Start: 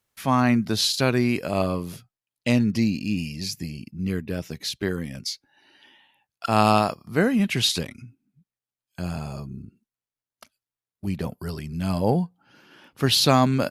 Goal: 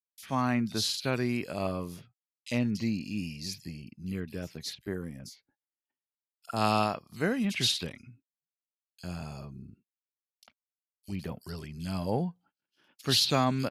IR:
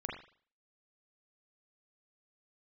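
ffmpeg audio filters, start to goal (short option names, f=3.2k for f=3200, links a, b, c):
-filter_complex "[0:a]agate=range=-41dB:threshold=-49dB:ratio=16:detection=peak,asetnsamples=n=441:p=0,asendcmd='4.7 equalizer g -10;6.56 equalizer g 6.5',equalizer=f=4k:t=o:w=1.7:g=3.5,acrossover=split=3500[a][b];[a]adelay=50[c];[c][b]amix=inputs=2:normalize=0,volume=-8.5dB"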